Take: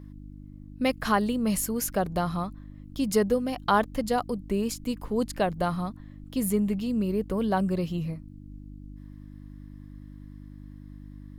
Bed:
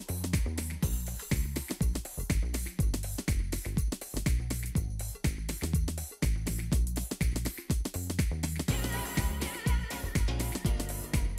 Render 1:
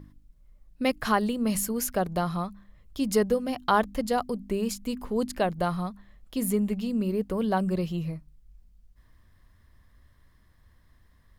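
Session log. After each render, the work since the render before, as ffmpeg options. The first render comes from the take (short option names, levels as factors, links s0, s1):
-af "bandreject=f=50:t=h:w=4,bandreject=f=100:t=h:w=4,bandreject=f=150:t=h:w=4,bandreject=f=200:t=h:w=4,bandreject=f=250:t=h:w=4,bandreject=f=300:t=h:w=4"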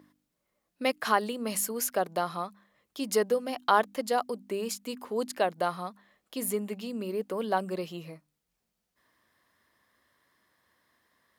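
-af "highpass=360"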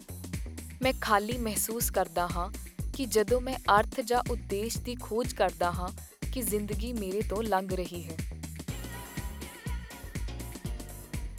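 -filter_complex "[1:a]volume=0.422[s0];[0:a][s0]amix=inputs=2:normalize=0"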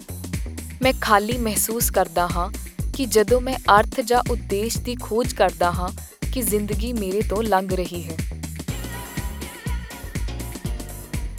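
-af "volume=2.82,alimiter=limit=0.891:level=0:latency=1"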